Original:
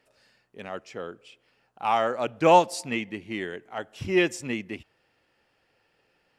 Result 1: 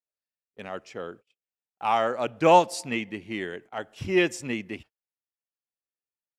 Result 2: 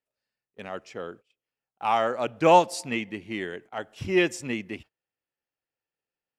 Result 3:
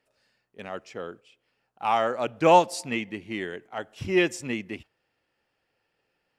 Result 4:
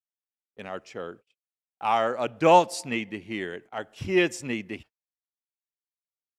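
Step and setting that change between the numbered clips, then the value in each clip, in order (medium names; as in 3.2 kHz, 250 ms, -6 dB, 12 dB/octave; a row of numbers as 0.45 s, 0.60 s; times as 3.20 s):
gate, range: -39 dB, -25 dB, -7 dB, -51 dB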